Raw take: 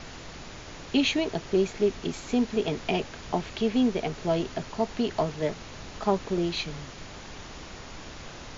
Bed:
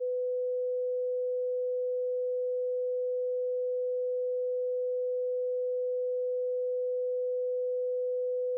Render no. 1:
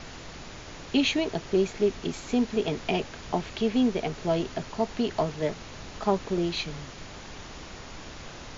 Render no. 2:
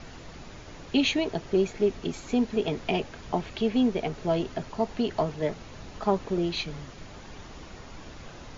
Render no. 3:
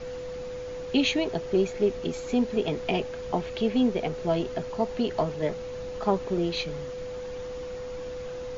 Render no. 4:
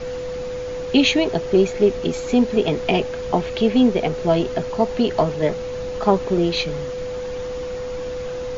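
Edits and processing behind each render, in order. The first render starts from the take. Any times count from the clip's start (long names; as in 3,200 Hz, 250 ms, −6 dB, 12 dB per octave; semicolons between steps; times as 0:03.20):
no processing that can be heard
broadband denoise 6 dB, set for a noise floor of −43 dBFS
mix in bed −5.5 dB
level +8 dB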